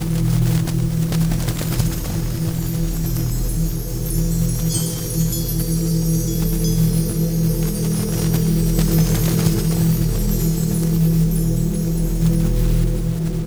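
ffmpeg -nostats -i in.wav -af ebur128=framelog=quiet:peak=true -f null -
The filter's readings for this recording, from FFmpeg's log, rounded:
Integrated loudness:
  I:         -19.5 LUFS
  Threshold: -29.5 LUFS
Loudness range:
  LRA:         3.6 LU
  Threshold: -39.5 LUFS
  LRA low:   -21.6 LUFS
  LRA high:  -18.1 LUFS
True peak:
  Peak:       -2.8 dBFS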